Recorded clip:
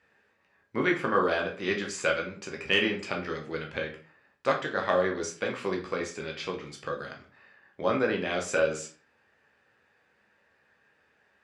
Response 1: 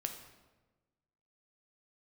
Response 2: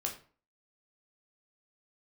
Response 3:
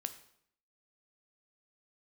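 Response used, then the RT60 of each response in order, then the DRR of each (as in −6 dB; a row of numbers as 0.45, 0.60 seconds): 2; 1.2, 0.40, 0.70 seconds; 4.5, 0.5, 9.0 decibels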